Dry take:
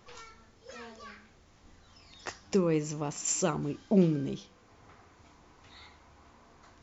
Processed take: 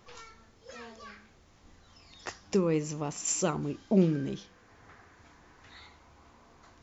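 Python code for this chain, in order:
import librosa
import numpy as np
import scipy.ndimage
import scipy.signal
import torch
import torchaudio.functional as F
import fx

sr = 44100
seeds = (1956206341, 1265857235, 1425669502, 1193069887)

y = fx.peak_eq(x, sr, hz=1700.0, db=9.0, octaves=0.38, at=(4.07, 5.8))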